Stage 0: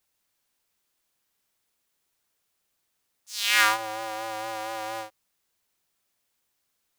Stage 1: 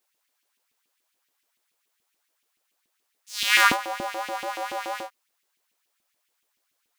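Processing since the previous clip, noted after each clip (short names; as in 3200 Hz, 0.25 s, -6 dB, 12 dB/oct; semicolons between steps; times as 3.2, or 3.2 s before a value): LFO high-pass saw up 7 Hz 240–2900 Hz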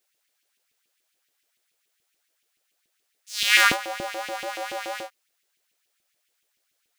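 fifteen-band EQ 250 Hz -6 dB, 1000 Hz -9 dB, 16000 Hz -3 dB; gain +2.5 dB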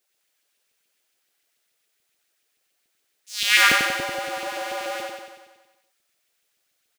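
feedback echo 93 ms, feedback 60%, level -4 dB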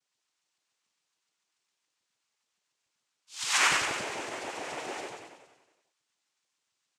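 noise vocoder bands 4; gain -8 dB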